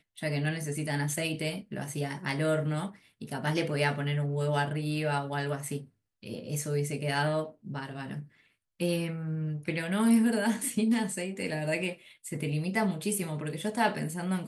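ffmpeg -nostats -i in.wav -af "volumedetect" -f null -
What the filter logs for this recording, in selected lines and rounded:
mean_volume: -30.9 dB
max_volume: -13.6 dB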